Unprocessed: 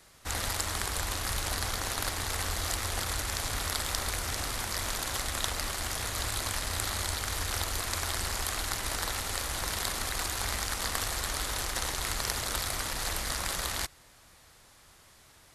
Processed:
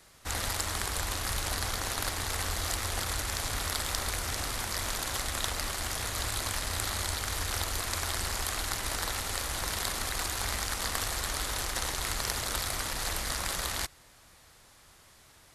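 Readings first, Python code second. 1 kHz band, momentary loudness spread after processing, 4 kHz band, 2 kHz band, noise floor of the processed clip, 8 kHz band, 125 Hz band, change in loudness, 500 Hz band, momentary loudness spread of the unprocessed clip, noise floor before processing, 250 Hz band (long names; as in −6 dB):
0.0 dB, 1 LU, 0.0 dB, 0.0 dB, −58 dBFS, 0.0 dB, 0.0 dB, 0.0 dB, 0.0 dB, 1 LU, −58 dBFS, 0.0 dB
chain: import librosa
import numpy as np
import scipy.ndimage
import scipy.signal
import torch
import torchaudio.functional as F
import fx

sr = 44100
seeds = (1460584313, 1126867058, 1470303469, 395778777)

y = 10.0 ** (-10.0 / 20.0) * np.tanh(x / 10.0 ** (-10.0 / 20.0))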